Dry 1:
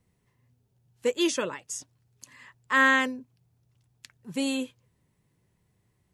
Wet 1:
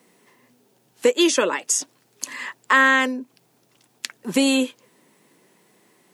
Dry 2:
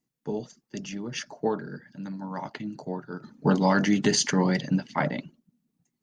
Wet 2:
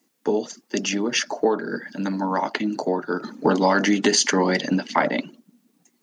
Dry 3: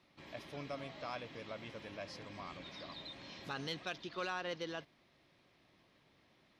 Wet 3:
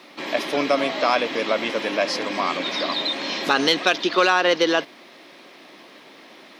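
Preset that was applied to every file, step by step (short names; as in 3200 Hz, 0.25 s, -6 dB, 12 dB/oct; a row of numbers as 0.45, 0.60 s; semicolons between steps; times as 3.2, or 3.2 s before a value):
HPF 240 Hz 24 dB/oct; compressor 2.5:1, threshold -38 dBFS; normalise peaks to -3 dBFS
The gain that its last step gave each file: +19.0, +17.0, +24.5 dB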